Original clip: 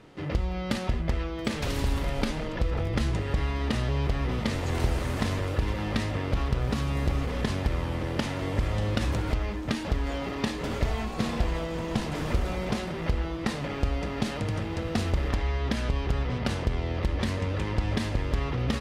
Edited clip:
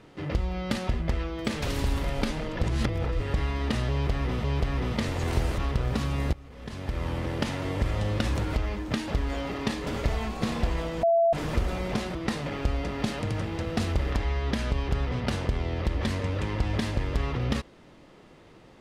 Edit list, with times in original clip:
2.63–3.2 reverse
3.91–4.44 loop, 2 plays
5.05–6.35 cut
7.1–7.86 fade in quadratic, from -20 dB
11.8–12.1 bleep 672 Hz -18 dBFS
12.92–13.33 cut

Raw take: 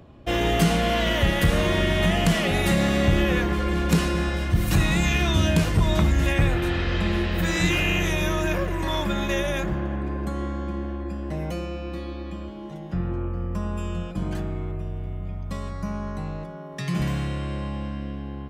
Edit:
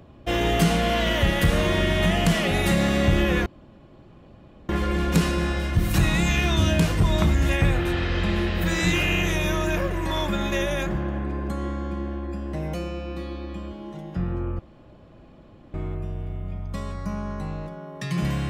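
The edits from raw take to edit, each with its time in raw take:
3.46 insert room tone 1.23 s
13.36–14.51 room tone

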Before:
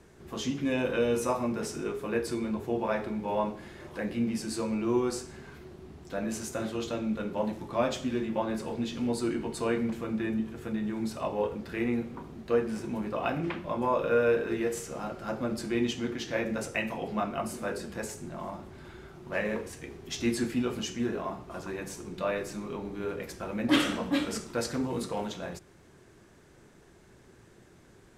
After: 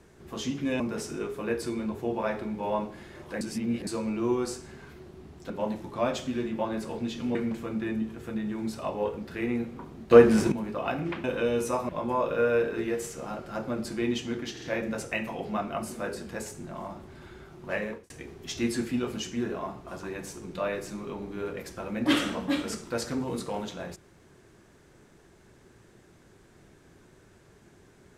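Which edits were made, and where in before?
0.8–1.45 move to 13.62
4.06–4.52 reverse
6.15–7.27 cut
9.12–9.73 cut
12.49–12.9 gain +12 dB
16.25 stutter 0.05 s, 3 plays
19.41–19.73 fade out

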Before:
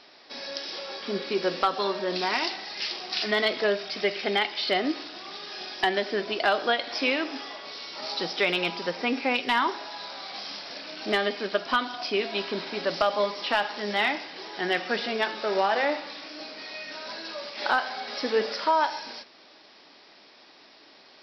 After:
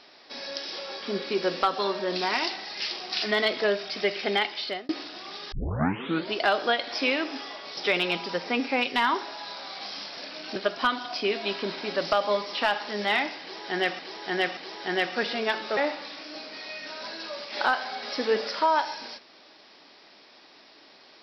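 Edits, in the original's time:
4.32–4.89 fade out equal-power
5.52 tape start 0.80 s
7.77–8.3 cut
11.09–11.45 cut
14.3–14.88 loop, 3 plays
15.5–15.82 cut

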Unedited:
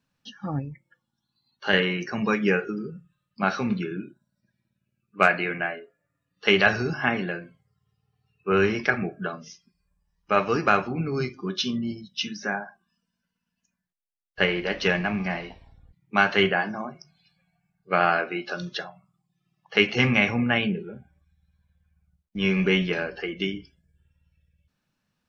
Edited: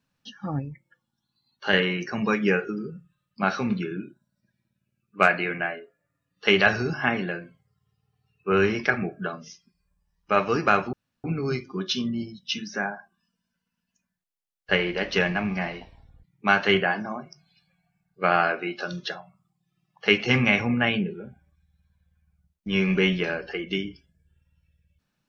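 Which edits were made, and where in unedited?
10.93 insert room tone 0.31 s

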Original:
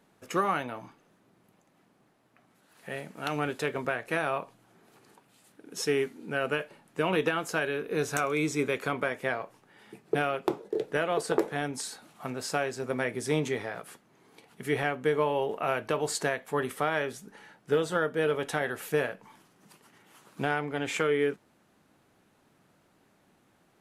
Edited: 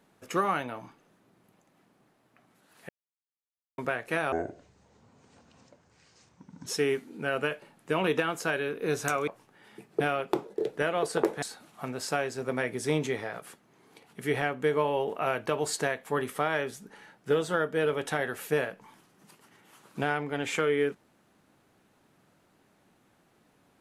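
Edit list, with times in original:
2.89–3.78 mute
4.32–5.75 speed 61%
8.36–9.42 cut
11.57–11.84 cut

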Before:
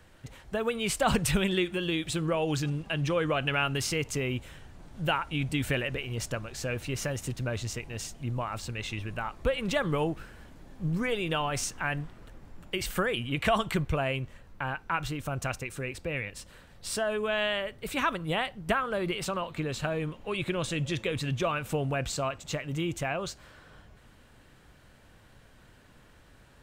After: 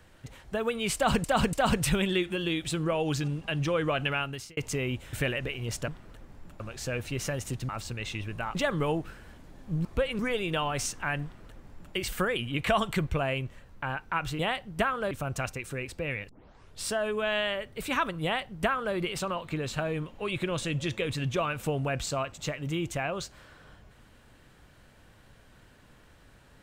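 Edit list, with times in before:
0.95–1.24 loop, 3 plays
3.46–3.99 fade out
4.55–5.62 cut
7.46–8.47 cut
9.33–9.67 move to 10.97
12.01–12.73 copy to 6.37
16.35 tape start 0.52 s
18.29–19.01 copy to 15.17

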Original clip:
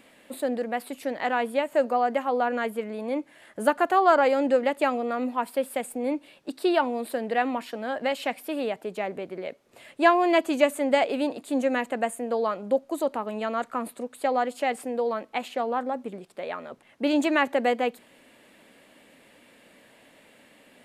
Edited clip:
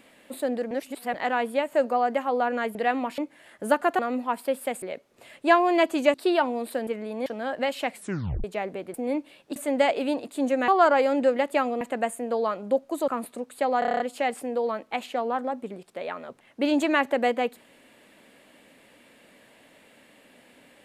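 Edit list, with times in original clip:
0.71–1.14 reverse
2.75–3.14 swap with 7.26–7.69
3.95–5.08 move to 11.81
5.91–6.53 swap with 9.37–10.69
8.34 tape stop 0.53 s
13.08–13.71 cut
14.42 stutter 0.03 s, 8 plays

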